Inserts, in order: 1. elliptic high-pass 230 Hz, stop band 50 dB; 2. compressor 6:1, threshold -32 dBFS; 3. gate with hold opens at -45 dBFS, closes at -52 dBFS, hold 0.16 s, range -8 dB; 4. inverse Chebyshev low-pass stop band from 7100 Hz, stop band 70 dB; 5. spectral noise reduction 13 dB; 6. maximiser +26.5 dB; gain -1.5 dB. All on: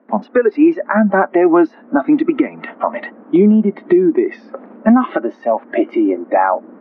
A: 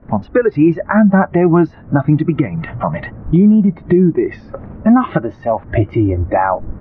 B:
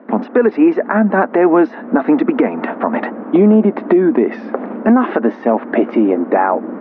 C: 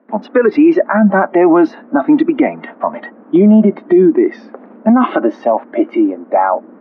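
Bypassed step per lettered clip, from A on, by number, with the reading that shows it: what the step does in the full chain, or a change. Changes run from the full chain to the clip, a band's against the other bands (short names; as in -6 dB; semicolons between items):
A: 1, 125 Hz band +13.0 dB; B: 5, momentary loudness spread change -2 LU; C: 2, mean gain reduction 5.0 dB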